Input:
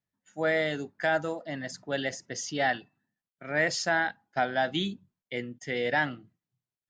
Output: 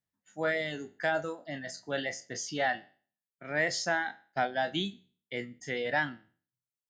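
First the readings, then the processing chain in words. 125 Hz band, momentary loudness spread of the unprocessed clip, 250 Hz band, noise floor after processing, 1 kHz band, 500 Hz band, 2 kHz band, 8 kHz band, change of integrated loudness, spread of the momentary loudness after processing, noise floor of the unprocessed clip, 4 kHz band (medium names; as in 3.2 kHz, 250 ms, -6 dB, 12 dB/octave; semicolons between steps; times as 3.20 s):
-4.0 dB, 10 LU, -4.0 dB, under -85 dBFS, -3.0 dB, -3.5 dB, -3.0 dB, -1.5 dB, -3.0 dB, 10 LU, under -85 dBFS, -2.0 dB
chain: spectral sustain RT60 0.43 s; reverb removal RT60 0.81 s; trim -3 dB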